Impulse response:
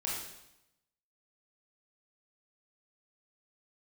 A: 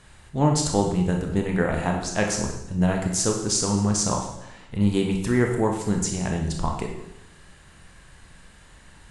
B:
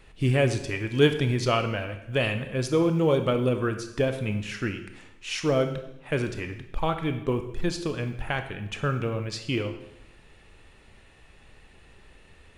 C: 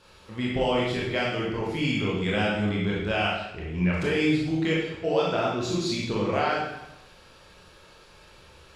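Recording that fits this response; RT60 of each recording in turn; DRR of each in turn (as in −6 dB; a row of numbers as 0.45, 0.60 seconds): C; 0.85, 0.85, 0.85 seconds; 1.5, 7.0, −5.0 decibels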